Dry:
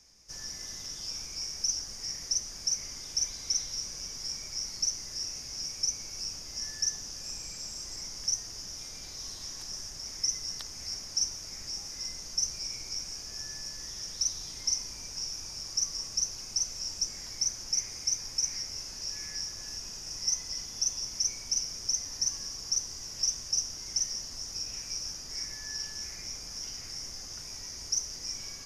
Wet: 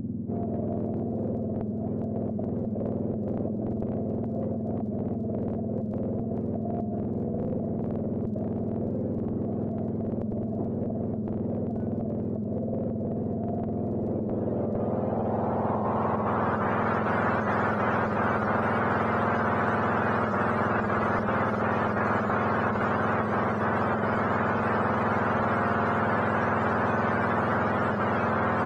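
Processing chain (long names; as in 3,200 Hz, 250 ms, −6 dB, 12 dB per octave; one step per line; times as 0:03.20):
frequency axis turned over on the octave scale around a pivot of 1,100 Hz
on a send at −21 dB: convolution reverb RT60 0.60 s, pre-delay 4 ms
on the sum: low-pass filter sweep 260 Hz → 1,400 Hz, 0:13.70–0:16.78
in parallel at +1 dB: compressor whose output falls as the input rises −27 dBFS, ratio −1
on the sum: multiband delay without the direct sound lows, highs 430 ms, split 4,000 Hz
every bin compressed towards the loudest bin 10 to 1
level −7.5 dB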